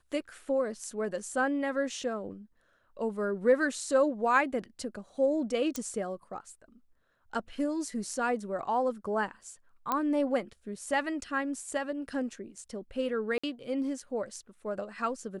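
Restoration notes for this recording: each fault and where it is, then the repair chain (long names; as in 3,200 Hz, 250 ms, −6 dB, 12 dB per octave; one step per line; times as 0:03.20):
0:05.76: click −19 dBFS
0:09.92: click −15 dBFS
0:13.38–0:13.44: drop-out 55 ms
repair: click removal
repair the gap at 0:13.38, 55 ms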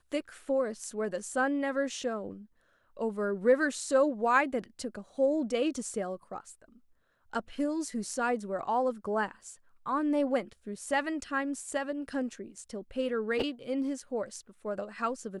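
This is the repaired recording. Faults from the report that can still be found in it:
none of them is left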